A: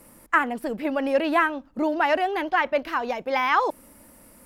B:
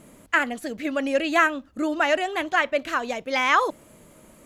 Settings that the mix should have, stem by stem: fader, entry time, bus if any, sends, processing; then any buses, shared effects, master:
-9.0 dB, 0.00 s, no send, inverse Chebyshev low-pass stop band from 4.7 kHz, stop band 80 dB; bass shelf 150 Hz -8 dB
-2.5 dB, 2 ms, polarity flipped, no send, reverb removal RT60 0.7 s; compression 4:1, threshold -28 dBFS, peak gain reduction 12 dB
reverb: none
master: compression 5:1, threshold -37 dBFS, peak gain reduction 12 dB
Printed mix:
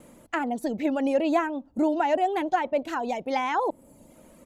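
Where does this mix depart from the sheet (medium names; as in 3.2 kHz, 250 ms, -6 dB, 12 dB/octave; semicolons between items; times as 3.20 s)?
stem A -9.0 dB -> +1.0 dB; master: missing compression 5:1, threshold -37 dBFS, peak gain reduction 12 dB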